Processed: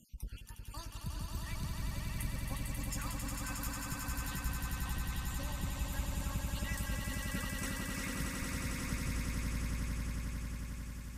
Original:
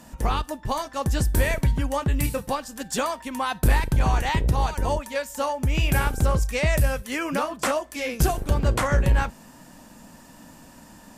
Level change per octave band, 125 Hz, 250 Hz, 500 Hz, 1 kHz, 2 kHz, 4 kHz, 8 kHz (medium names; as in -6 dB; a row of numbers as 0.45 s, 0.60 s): -14.0 dB, -12.5 dB, -24.0 dB, -20.0 dB, -13.0 dB, -11.5 dB, -8.5 dB